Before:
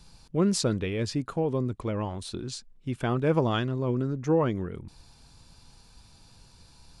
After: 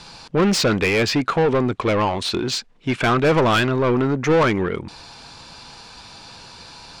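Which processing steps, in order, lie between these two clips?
Bessel low-pass filter 6,100 Hz, order 2
dynamic equaliser 2,300 Hz, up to +7 dB, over −55 dBFS, Q 2.2
mid-hump overdrive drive 25 dB, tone 3,900 Hz, clips at −12 dBFS
level +3 dB

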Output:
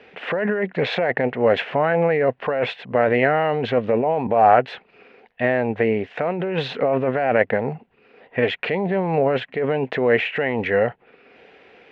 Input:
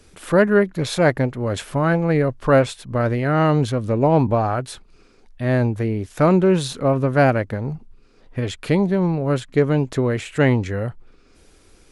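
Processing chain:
compressor whose output falls as the input rises −21 dBFS, ratio −1
loudspeaker in its box 260–3,000 Hz, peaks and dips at 320 Hz −8 dB, 470 Hz +5 dB, 740 Hz +7 dB, 1,200 Hz −5 dB, 1,900 Hz +7 dB, 2,700 Hz +6 dB
level +3.5 dB

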